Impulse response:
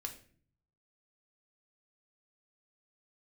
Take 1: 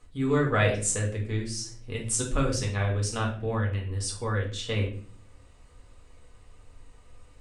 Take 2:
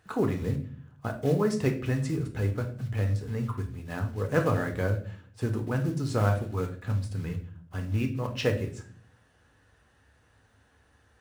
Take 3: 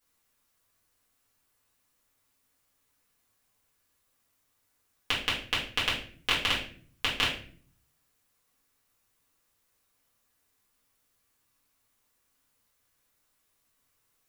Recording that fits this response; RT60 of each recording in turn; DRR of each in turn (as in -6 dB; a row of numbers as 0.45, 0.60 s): 2; 0.45, 0.45, 0.45 s; -2.0, 3.5, -8.0 dB